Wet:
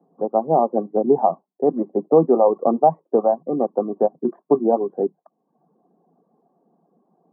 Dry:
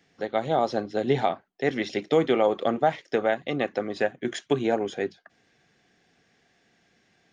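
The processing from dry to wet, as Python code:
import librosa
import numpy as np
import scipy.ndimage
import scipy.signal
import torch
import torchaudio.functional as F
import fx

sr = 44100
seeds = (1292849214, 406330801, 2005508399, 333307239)

y = scipy.signal.sosfilt(scipy.signal.cheby1(5, 1.0, [160.0, 1100.0], 'bandpass', fs=sr, output='sos'), x)
y = fx.dereverb_blind(y, sr, rt60_s=0.67)
y = y * 10.0 ** (8.0 / 20.0)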